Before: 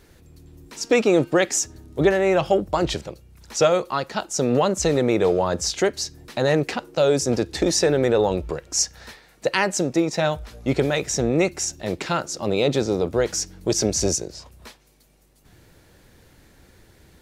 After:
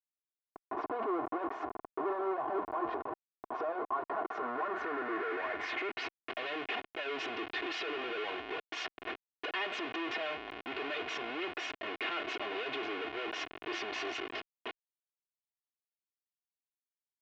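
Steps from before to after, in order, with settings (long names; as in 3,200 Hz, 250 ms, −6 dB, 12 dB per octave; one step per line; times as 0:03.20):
mu-law and A-law mismatch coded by mu
comparator with hysteresis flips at −34 dBFS
low-pass filter sweep 1,000 Hz → 2,800 Hz, 0:04.00–0:06.31
band-pass filter 390–3,800 Hz
brickwall limiter −22.5 dBFS, peak gain reduction 9 dB
comb filter 2.8 ms, depth 77%
level −7.5 dB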